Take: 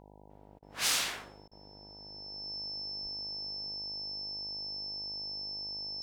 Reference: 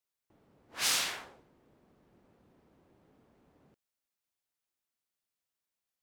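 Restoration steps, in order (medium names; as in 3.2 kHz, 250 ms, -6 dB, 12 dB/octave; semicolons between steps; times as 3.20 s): de-hum 50.8 Hz, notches 19; band-stop 5.3 kHz, Q 30; de-plosive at 3.02 s; interpolate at 0.59/1.48 s, 33 ms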